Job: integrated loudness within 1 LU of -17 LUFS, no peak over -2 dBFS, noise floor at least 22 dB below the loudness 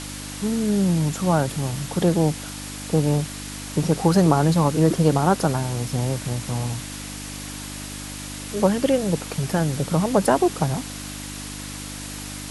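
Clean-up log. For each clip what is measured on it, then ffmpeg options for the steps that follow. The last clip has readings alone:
hum 50 Hz; harmonics up to 300 Hz; hum level -35 dBFS; noise floor -34 dBFS; noise floor target -45 dBFS; loudness -23.0 LUFS; peak -3.0 dBFS; loudness target -17.0 LUFS
-> -af "bandreject=f=50:t=h:w=4,bandreject=f=100:t=h:w=4,bandreject=f=150:t=h:w=4,bandreject=f=200:t=h:w=4,bandreject=f=250:t=h:w=4,bandreject=f=300:t=h:w=4"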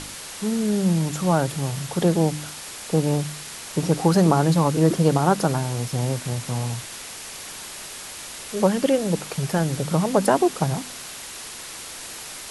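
hum none; noise floor -37 dBFS; noise floor target -45 dBFS
-> -af "afftdn=nr=8:nf=-37"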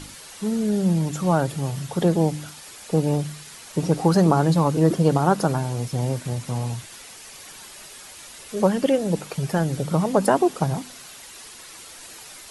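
noise floor -43 dBFS; noise floor target -45 dBFS
-> -af "afftdn=nr=6:nf=-43"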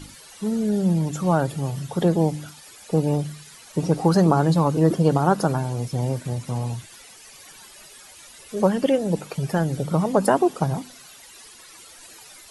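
noise floor -46 dBFS; loudness -22.5 LUFS; peak -4.5 dBFS; loudness target -17.0 LUFS
-> -af "volume=5.5dB,alimiter=limit=-2dB:level=0:latency=1"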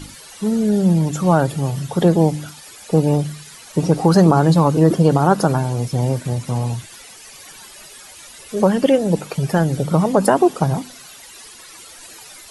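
loudness -17.5 LUFS; peak -2.0 dBFS; noise floor -41 dBFS

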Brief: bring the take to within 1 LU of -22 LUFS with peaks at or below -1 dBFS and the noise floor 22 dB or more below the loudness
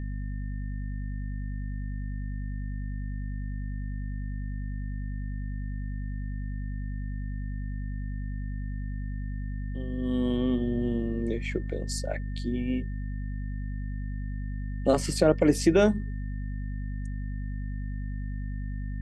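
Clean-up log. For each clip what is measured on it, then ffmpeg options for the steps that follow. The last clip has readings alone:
hum 50 Hz; harmonics up to 250 Hz; hum level -30 dBFS; steady tone 1800 Hz; tone level -52 dBFS; loudness -31.5 LUFS; peak -8.5 dBFS; loudness target -22.0 LUFS
-> -af "bandreject=f=50:t=h:w=4,bandreject=f=100:t=h:w=4,bandreject=f=150:t=h:w=4,bandreject=f=200:t=h:w=4,bandreject=f=250:t=h:w=4"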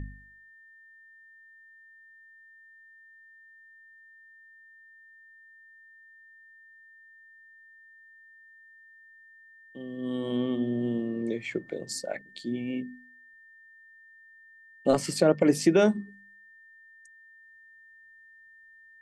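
hum none; steady tone 1800 Hz; tone level -52 dBFS
-> -af "bandreject=f=1.8k:w=30"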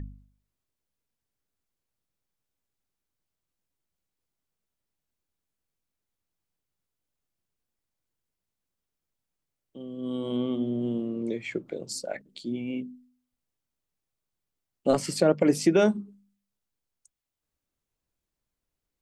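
steady tone none; loudness -28.0 LUFS; peak -9.0 dBFS; loudness target -22.0 LUFS
-> -af "volume=6dB"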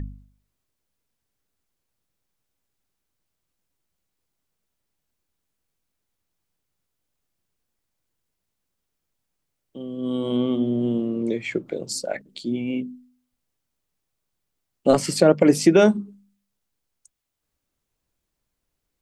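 loudness -22.0 LUFS; peak -3.0 dBFS; noise floor -80 dBFS

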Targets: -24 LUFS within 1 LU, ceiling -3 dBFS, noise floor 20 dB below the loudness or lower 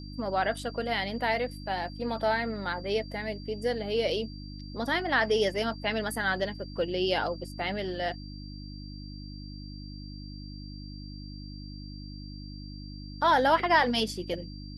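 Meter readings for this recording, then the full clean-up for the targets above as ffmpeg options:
hum 50 Hz; harmonics up to 300 Hz; hum level -39 dBFS; steady tone 4700 Hz; tone level -49 dBFS; loudness -29.0 LUFS; peak -10.0 dBFS; loudness target -24.0 LUFS
-> -af "bandreject=f=50:t=h:w=4,bandreject=f=100:t=h:w=4,bandreject=f=150:t=h:w=4,bandreject=f=200:t=h:w=4,bandreject=f=250:t=h:w=4,bandreject=f=300:t=h:w=4"
-af "bandreject=f=4.7k:w=30"
-af "volume=5dB"

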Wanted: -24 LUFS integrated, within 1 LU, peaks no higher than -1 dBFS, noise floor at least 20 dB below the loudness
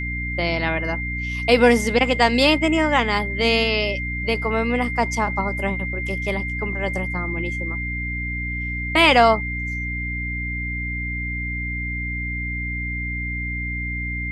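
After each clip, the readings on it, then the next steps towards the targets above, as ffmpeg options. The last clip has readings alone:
hum 60 Hz; harmonics up to 300 Hz; hum level -26 dBFS; steady tone 2100 Hz; tone level -27 dBFS; loudness -21.5 LUFS; peak -2.0 dBFS; loudness target -24.0 LUFS
-> -af "bandreject=f=60:t=h:w=4,bandreject=f=120:t=h:w=4,bandreject=f=180:t=h:w=4,bandreject=f=240:t=h:w=4,bandreject=f=300:t=h:w=4"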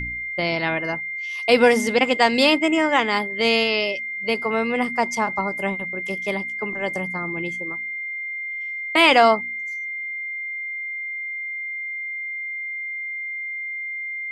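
hum none; steady tone 2100 Hz; tone level -27 dBFS
-> -af "bandreject=f=2.1k:w=30"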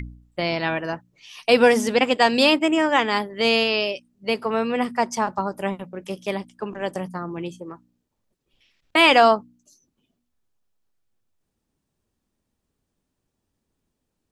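steady tone none; loudness -20.5 LUFS; peak -2.5 dBFS; loudness target -24.0 LUFS
-> -af "volume=-3.5dB"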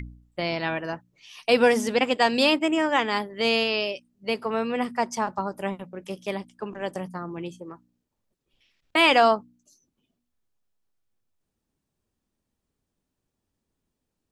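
loudness -24.0 LUFS; peak -6.0 dBFS; noise floor -82 dBFS

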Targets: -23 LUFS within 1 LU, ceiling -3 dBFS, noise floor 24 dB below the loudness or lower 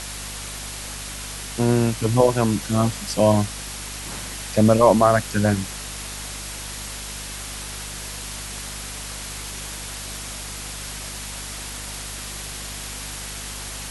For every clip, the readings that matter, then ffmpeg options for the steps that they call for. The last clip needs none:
hum 50 Hz; harmonics up to 250 Hz; hum level -36 dBFS; noise floor -33 dBFS; noise floor target -49 dBFS; loudness -24.5 LUFS; peak -2.5 dBFS; loudness target -23.0 LUFS
-> -af "bandreject=f=50:t=h:w=4,bandreject=f=100:t=h:w=4,bandreject=f=150:t=h:w=4,bandreject=f=200:t=h:w=4,bandreject=f=250:t=h:w=4"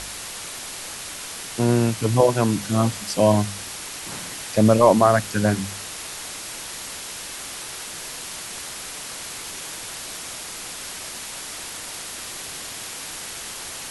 hum none; noise floor -35 dBFS; noise floor target -49 dBFS
-> -af "afftdn=nr=14:nf=-35"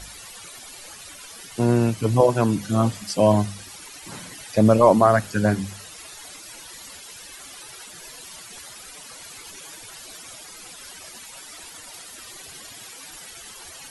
noise floor -42 dBFS; noise floor target -44 dBFS
-> -af "afftdn=nr=6:nf=-42"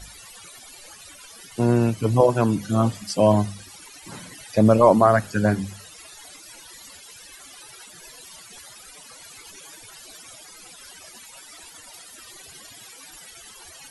noise floor -45 dBFS; loudness -20.0 LUFS; peak -2.0 dBFS; loudness target -23.0 LUFS
-> -af "volume=-3dB"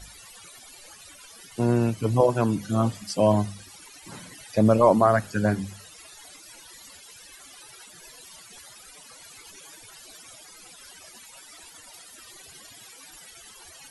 loudness -23.0 LUFS; peak -5.0 dBFS; noise floor -48 dBFS

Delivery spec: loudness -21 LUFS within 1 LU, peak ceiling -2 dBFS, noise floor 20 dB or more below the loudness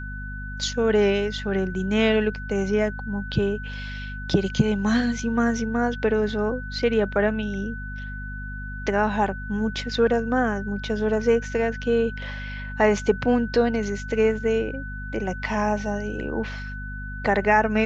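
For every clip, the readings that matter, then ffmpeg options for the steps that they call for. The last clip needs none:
hum 50 Hz; harmonics up to 250 Hz; hum level -31 dBFS; steady tone 1500 Hz; tone level -36 dBFS; loudness -24.0 LUFS; peak -6.0 dBFS; loudness target -21.0 LUFS
-> -af "bandreject=f=50:t=h:w=6,bandreject=f=100:t=h:w=6,bandreject=f=150:t=h:w=6,bandreject=f=200:t=h:w=6,bandreject=f=250:t=h:w=6"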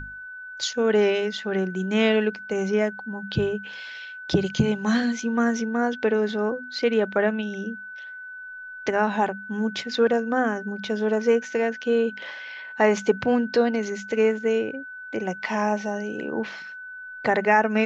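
hum none; steady tone 1500 Hz; tone level -36 dBFS
-> -af "bandreject=f=1.5k:w=30"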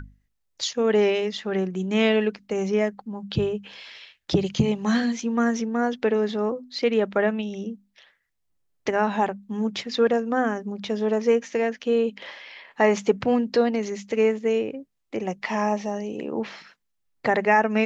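steady tone none; loudness -24.5 LUFS; peak -6.0 dBFS; loudness target -21.0 LUFS
-> -af "volume=3.5dB"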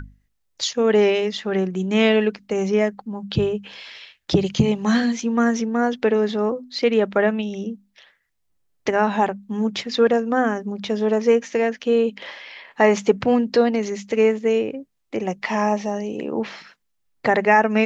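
loudness -21.0 LUFS; peak -2.5 dBFS; noise floor -71 dBFS

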